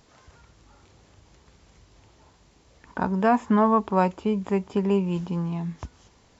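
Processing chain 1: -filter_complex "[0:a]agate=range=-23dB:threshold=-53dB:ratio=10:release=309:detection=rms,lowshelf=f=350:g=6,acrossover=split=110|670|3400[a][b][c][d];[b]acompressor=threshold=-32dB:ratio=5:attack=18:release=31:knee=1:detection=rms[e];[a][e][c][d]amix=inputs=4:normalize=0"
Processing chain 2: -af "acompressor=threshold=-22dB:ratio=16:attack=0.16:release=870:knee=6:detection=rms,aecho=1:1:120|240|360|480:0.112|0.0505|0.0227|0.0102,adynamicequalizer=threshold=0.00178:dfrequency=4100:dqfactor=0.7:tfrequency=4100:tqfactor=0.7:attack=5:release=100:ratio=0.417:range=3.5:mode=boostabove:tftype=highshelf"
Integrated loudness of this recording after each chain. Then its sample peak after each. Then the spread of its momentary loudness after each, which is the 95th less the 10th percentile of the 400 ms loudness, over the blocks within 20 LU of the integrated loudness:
-27.5, -32.5 LUFS; -9.0, -20.5 dBFS; 10, 9 LU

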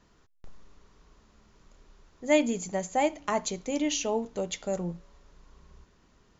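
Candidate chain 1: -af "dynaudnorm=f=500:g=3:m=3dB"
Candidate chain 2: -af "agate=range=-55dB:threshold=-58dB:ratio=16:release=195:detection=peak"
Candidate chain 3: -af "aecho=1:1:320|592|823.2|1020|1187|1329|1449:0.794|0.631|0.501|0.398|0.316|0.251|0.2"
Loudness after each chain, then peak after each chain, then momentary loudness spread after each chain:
-26.5, -29.5, -26.5 LUFS; -8.0, -11.0, -10.0 dBFS; 9, 9, 13 LU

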